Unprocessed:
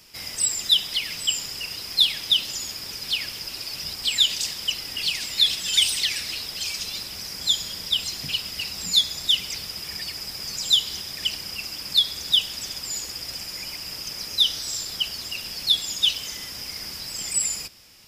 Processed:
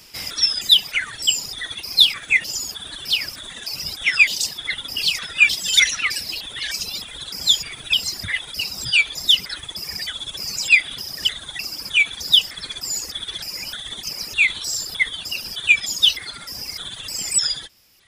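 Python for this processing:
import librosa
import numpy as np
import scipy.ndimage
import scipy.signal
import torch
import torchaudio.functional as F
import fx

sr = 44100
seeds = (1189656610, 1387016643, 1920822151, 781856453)

y = fx.pitch_trill(x, sr, semitones=-6.5, every_ms=305)
y = fx.dereverb_blind(y, sr, rt60_s=1.7)
y = F.gain(torch.from_numpy(y), 5.5).numpy()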